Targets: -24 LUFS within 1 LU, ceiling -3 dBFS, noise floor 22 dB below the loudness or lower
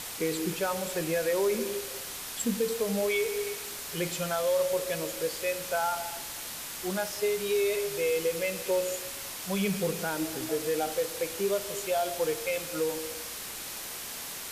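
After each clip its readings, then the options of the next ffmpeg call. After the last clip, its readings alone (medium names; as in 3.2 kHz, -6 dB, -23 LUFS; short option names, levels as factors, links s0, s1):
noise floor -39 dBFS; noise floor target -53 dBFS; loudness -30.5 LUFS; peak level -17.5 dBFS; loudness target -24.0 LUFS
-> -af "afftdn=nr=14:nf=-39"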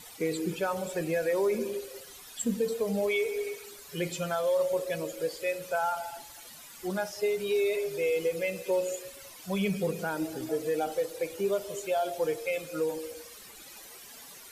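noise floor -49 dBFS; noise floor target -53 dBFS
-> -af "afftdn=nr=6:nf=-49"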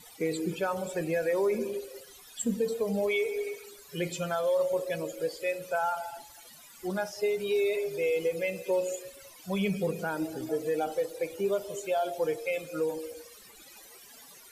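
noise floor -52 dBFS; noise floor target -53 dBFS
-> -af "afftdn=nr=6:nf=-52"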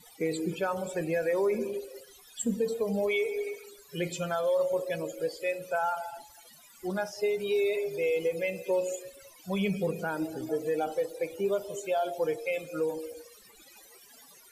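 noise floor -55 dBFS; loudness -31.0 LUFS; peak level -19.0 dBFS; loudness target -24.0 LUFS
-> -af "volume=2.24"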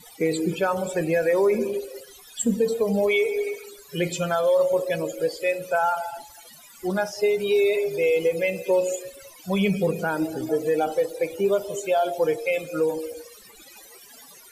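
loudness -24.0 LUFS; peak level -12.0 dBFS; noise floor -48 dBFS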